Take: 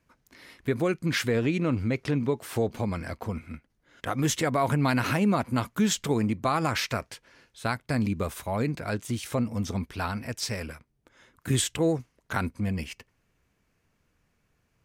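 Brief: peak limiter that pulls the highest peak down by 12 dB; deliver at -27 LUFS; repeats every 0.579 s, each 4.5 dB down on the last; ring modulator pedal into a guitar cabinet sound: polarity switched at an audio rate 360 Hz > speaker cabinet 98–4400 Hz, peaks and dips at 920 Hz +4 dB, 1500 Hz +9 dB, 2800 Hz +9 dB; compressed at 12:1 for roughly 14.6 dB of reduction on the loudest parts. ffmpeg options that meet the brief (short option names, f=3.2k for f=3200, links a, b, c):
-af "acompressor=threshold=-35dB:ratio=12,alimiter=level_in=6.5dB:limit=-24dB:level=0:latency=1,volume=-6.5dB,aecho=1:1:579|1158|1737|2316|2895|3474|4053|4632|5211:0.596|0.357|0.214|0.129|0.0772|0.0463|0.0278|0.0167|0.01,aeval=exprs='val(0)*sgn(sin(2*PI*360*n/s))':c=same,highpass=98,equalizer=f=920:t=q:w=4:g=4,equalizer=f=1.5k:t=q:w=4:g=9,equalizer=f=2.8k:t=q:w=4:g=9,lowpass=f=4.4k:w=0.5412,lowpass=f=4.4k:w=1.3066,volume=10.5dB"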